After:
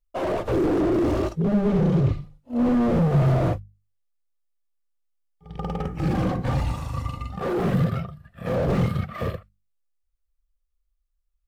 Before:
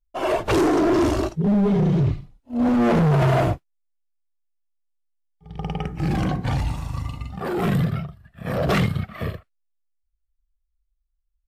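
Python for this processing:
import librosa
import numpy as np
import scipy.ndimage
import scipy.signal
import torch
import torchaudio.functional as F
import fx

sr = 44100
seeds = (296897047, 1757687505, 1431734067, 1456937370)

y = fx.hum_notches(x, sr, base_hz=50, count=4)
y = fx.small_body(y, sr, hz=(520.0, 1200.0), ring_ms=45, db=9)
y = fx.slew_limit(y, sr, full_power_hz=41.0)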